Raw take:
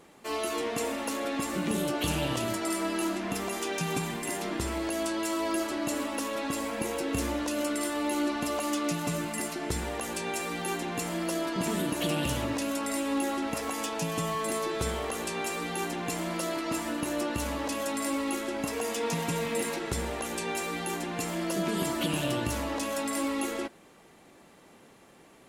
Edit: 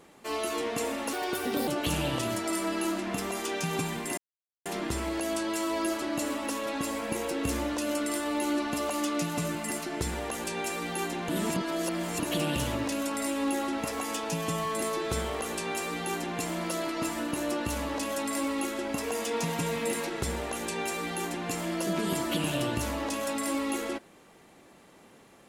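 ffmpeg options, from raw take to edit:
ffmpeg -i in.wav -filter_complex "[0:a]asplit=6[link_01][link_02][link_03][link_04][link_05][link_06];[link_01]atrim=end=1.134[link_07];[link_02]atrim=start=1.13:end=1.85,asetpts=PTS-STARTPTS,asetrate=58212,aresample=44100[link_08];[link_03]atrim=start=1.846:end=4.35,asetpts=PTS-STARTPTS,afade=type=out:start_time=2.5:duration=0.004:curve=hsin,apad=pad_dur=0.48[link_09];[link_04]atrim=start=4.35:end=10.982,asetpts=PTS-STARTPTS,afade=type=in:duration=0.004:curve=hsin[link_10];[link_05]atrim=start=10.978:end=11.892,asetpts=PTS-STARTPTS,areverse[link_11];[link_06]atrim=start=11.888[link_12];[link_07][link_08]acrossfade=duration=0.004:curve1=hsin:curve2=hsin[link_13];[link_09][link_10]concat=n=2:v=0:a=1[link_14];[link_13][link_14]acrossfade=duration=0.004:curve1=hsin:curve2=hsin[link_15];[link_15][link_11]acrossfade=duration=0.004:curve1=hsin:curve2=hsin[link_16];[link_16][link_12]acrossfade=duration=0.004:curve1=hsin:curve2=hsin" out.wav

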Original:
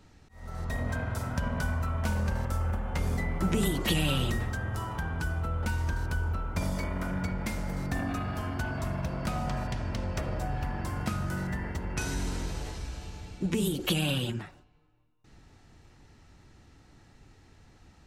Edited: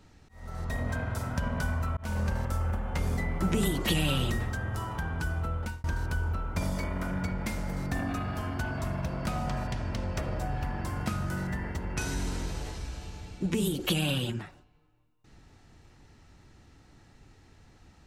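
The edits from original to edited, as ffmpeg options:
ffmpeg -i in.wav -filter_complex "[0:a]asplit=3[link_01][link_02][link_03];[link_01]atrim=end=1.97,asetpts=PTS-STARTPTS,afade=type=out:start_time=1.966:duration=0.004:curve=hsin[link_04];[link_02]atrim=start=1.97:end=5.84,asetpts=PTS-STARTPTS,afade=type=in:duration=0.28:curve=qsin,afade=type=out:start_time=3.46:duration=0.41:curve=qsin[link_05];[link_03]atrim=start=5.84,asetpts=PTS-STARTPTS,afade=type=in:duration=0.004:curve=hsin[link_06];[link_04][link_05][link_06]concat=n=3:v=0:a=1" out.wav

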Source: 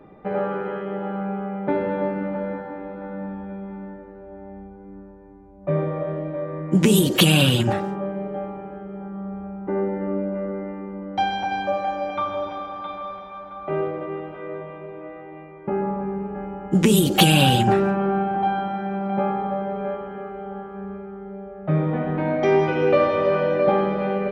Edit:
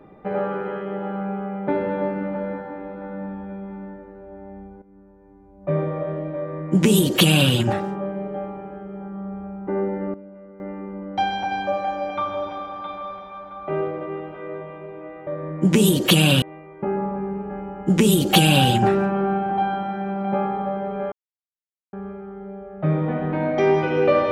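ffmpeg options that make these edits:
ffmpeg -i in.wav -filter_complex "[0:a]asplit=8[link_01][link_02][link_03][link_04][link_05][link_06][link_07][link_08];[link_01]atrim=end=4.82,asetpts=PTS-STARTPTS,afade=type=out:start_time=4.816:duration=0.004:curve=hsin:silence=0.223872[link_09];[link_02]atrim=start=4.82:end=10.14,asetpts=PTS-STARTPTS,afade=type=in:duration=0.88:silence=0.223872,afade=type=out:start_time=5.11:duration=0.21:curve=log:silence=0.16788[link_10];[link_03]atrim=start=10.14:end=10.6,asetpts=PTS-STARTPTS,volume=-15.5dB[link_11];[link_04]atrim=start=10.6:end=15.272,asetpts=PTS-STARTPTS,afade=type=in:duration=0.21:curve=log:silence=0.16788[link_12];[link_05]atrim=start=6.368:end=7.522[link_13];[link_06]atrim=start=15.268:end=19.97,asetpts=PTS-STARTPTS,afade=type=out:start_time=4.698:duration=0.004:curve=hsin[link_14];[link_07]atrim=start=19.97:end=20.78,asetpts=PTS-STARTPTS,volume=0[link_15];[link_08]atrim=start=20.78,asetpts=PTS-STARTPTS,afade=type=in:duration=0.004:curve=hsin[link_16];[link_09][link_10][link_11][link_12]concat=n=4:v=0:a=1[link_17];[link_17][link_13]acrossfade=duration=0.004:curve1=hsin:curve2=hsin[link_18];[link_14][link_15][link_16]concat=n=3:v=0:a=1[link_19];[link_18][link_19]acrossfade=duration=0.004:curve1=hsin:curve2=hsin" out.wav

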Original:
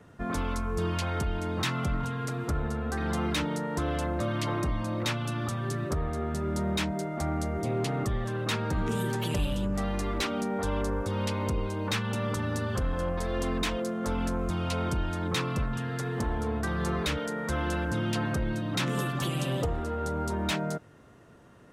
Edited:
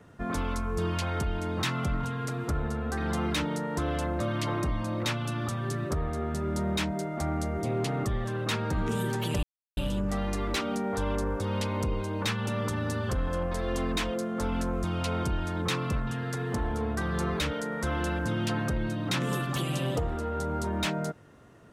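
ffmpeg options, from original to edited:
ffmpeg -i in.wav -filter_complex "[0:a]asplit=2[link_01][link_02];[link_01]atrim=end=9.43,asetpts=PTS-STARTPTS,afade=type=out:start_time=9.426:duration=0.004:curve=hsin,apad=pad_dur=0.34[link_03];[link_02]atrim=start=9.43,asetpts=PTS-STARTPTS,afade=type=in:duration=0.004:curve=hsin[link_04];[link_03][link_04]concat=n=2:v=0:a=1" out.wav

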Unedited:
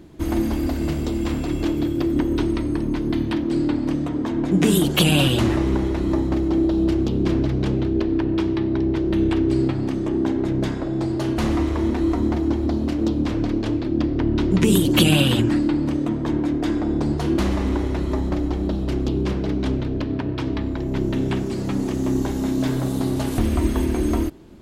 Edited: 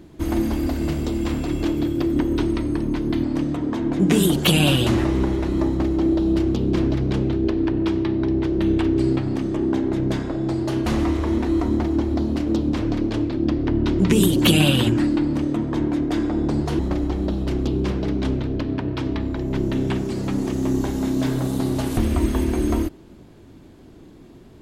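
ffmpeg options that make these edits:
ffmpeg -i in.wav -filter_complex "[0:a]asplit=3[link_01][link_02][link_03];[link_01]atrim=end=3.232[link_04];[link_02]atrim=start=3.748:end=17.312[link_05];[link_03]atrim=start=18.198[link_06];[link_04][link_05]acrossfade=duration=0.004:curve1=hsin:curve2=hsin[link_07];[link_07][link_06]acrossfade=duration=0.004:curve1=hsin:curve2=hsin" out.wav

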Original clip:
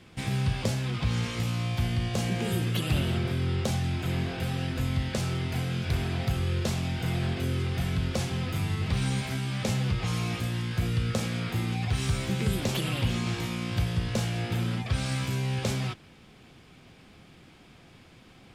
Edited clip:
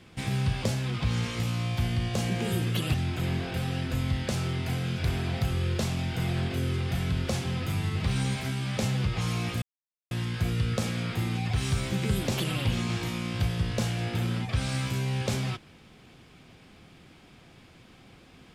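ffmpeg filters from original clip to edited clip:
ffmpeg -i in.wav -filter_complex "[0:a]asplit=3[link_01][link_02][link_03];[link_01]atrim=end=2.942[link_04];[link_02]atrim=start=3.798:end=10.48,asetpts=PTS-STARTPTS,afade=type=out:start_time=6.678:duration=0.004:curve=hsin,apad=pad_dur=0.49[link_05];[link_03]atrim=start=10.48,asetpts=PTS-STARTPTS,afade=type=in:duration=0.004:curve=hsin[link_06];[link_05][link_06]concat=n=2:v=0:a=1[link_07];[link_04][link_07]acrossfade=duration=0.004:curve1=hsin:curve2=hsin" out.wav

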